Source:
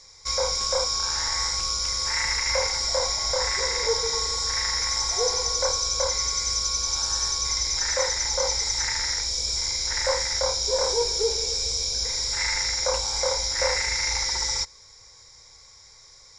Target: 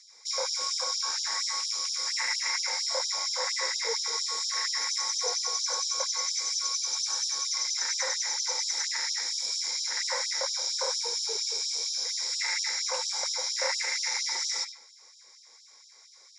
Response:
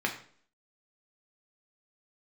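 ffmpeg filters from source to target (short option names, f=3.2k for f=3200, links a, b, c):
-filter_complex "[0:a]asplit=2[a][b];[1:a]atrim=start_sample=2205,adelay=70[c];[b][c]afir=irnorm=-1:irlink=0,volume=-12.5dB[d];[a][d]amix=inputs=2:normalize=0,acrossover=split=500|3000[e][f][g];[e]acompressor=threshold=-40dB:ratio=5[h];[h][f][g]amix=inputs=3:normalize=0,afftfilt=real='re*gte(b*sr/1024,210*pow(3000/210,0.5+0.5*sin(2*PI*4.3*pts/sr)))':imag='im*gte(b*sr/1024,210*pow(3000/210,0.5+0.5*sin(2*PI*4.3*pts/sr)))':win_size=1024:overlap=0.75,volume=-4.5dB"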